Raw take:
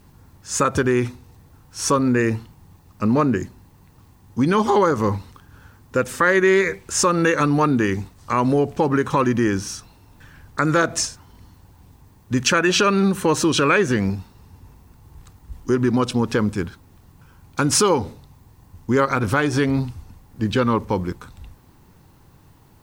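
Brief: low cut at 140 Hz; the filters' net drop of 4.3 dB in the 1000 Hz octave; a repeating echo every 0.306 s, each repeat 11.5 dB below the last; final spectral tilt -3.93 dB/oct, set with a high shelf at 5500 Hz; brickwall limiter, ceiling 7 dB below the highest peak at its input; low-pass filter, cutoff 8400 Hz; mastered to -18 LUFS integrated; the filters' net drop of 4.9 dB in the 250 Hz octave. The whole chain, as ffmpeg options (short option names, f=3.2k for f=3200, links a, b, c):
-af "highpass=140,lowpass=8.4k,equalizer=f=250:t=o:g=-5.5,equalizer=f=1k:t=o:g=-5.5,highshelf=f=5.5k:g=5,alimiter=limit=-12dB:level=0:latency=1,aecho=1:1:306|612|918:0.266|0.0718|0.0194,volume=6dB"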